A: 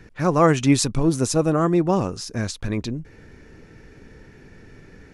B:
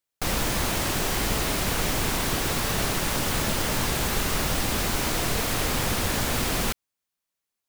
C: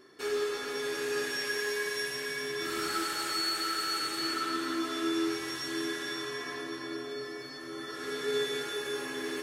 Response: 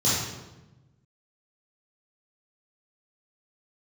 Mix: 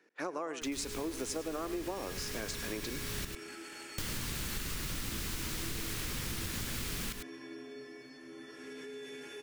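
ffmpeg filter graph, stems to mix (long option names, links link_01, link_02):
-filter_complex "[0:a]agate=range=-10dB:threshold=-42dB:ratio=16:detection=peak,highpass=frequency=300:width=0.5412,highpass=frequency=300:width=1.3066,acompressor=threshold=-20dB:ratio=6,volume=-6dB,asplit=3[link_01][link_02][link_03];[link_02]volume=-14.5dB[link_04];[1:a]equalizer=frequency=700:width_type=o:width=1.3:gain=-13,adelay=400,volume=-5dB,asplit=3[link_05][link_06][link_07];[link_05]atrim=end=3.25,asetpts=PTS-STARTPTS,afade=type=out:start_time=3.246:duration=0.004:curve=hsin[link_08];[link_06]atrim=start=3.25:end=3.98,asetpts=PTS-STARTPTS,volume=0[link_09];[link_07]atrim=start=3.98,asetpts=PTS-STARTPTS,afade=type=in:duration=0.004:curve=hsin[link_10];[link_08][link_09][link_10]concat=n=3:v=0:a=1,asplit=2[link_11][link_12];[link_12]volume=-9.5dB[link_13];[2:a]equalizer=frequency=250:width_type=o:width=0.33:gain=9,equalizer=frequency=1250:width_type=o:width=0.33:gain=-10,equalizer=frequency=2500:width_type=o:width=0.33:gain=7,equalizer=frequency=4000:width_type=o:width=0.33:gain=-9,equalizer=frequency=12500:width_type=o:width=0.33:gain=-9,alimiter=level_in=4.5dB:limit=-24dB:level=0:latency=1:release=24,volume=-4.5dB,adelay=600,volume=-9.5dB[link_14];[link_03]apad=whole_len=356512[link_15];[link_11][link_15]sidechaincompress=threshold=-46dB:ratio=8:attack=16:release=482[link_16];[link_04][link_13]amix=inputs=2:normalize=0,aecho=0:1:102:1[link_17];[link_01][link_16][link_14][link_17]amix=inputs=4:normalize=0,acompressor=threshold=-34dB:ratio=6"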